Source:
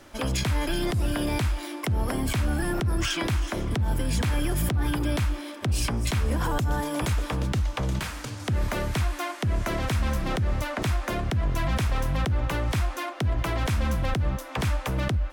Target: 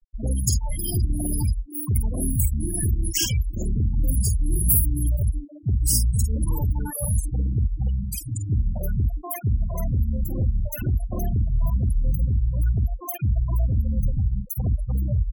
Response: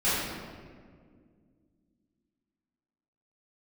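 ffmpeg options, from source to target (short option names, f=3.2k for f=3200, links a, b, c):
-filter_complex "[0:a]bandreject=f=3.5k:w=8.1,acrossover=split=160|1300[a][b][c];[b]adelay=40[d];[c]adelay=120[e];[a][d][e]amix=inputs=3:normalize=0,acompressor=threshold=-26dB:ratio=6,bass=f=250:g=10,treble=f=4k:g=4,asplit=2[f][g];[g]adelay=50,volume=-4dB[h];[f][h]amix=inputs=2:normalize=0,acontrast=56,aemphasis=mode=production:type=75fm,afftfilt=real='re*gte(hypot(re,im),0.2)':imag='im*gte(hypot(re,im),0.2)':win_size=1024:overlap=0.75,afftfilt=real='re*(1-between(b*sr/1024,270*pow(4900/270,0.5+0.5*sin(2*PI*1.1*pts/sr))/1.41,270*pow(4900/270,0.5+0.5*sin(2*PI*1.1*pts/sr))*1.41))':imag='im*(1-between(b*sr/1024,270*pow(4900/270,0.5+0.5*sin(2*PI*1.1*pts/sr))/1.41,270*pow(4900/270,0.5+0.5*sin(2*PI*1.1*pts/sr))*1.41))':win_size=1024:overlap=0.75,volume=-7dB"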